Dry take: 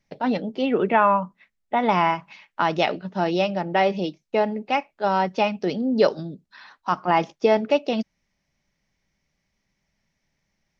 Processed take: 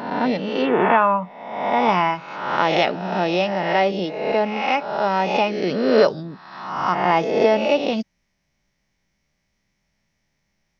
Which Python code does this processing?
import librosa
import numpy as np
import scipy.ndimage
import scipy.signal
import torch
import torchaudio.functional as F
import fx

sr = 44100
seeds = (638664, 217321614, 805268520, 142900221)

y = fx.spec_swells(x, sr, rise_s=1.04)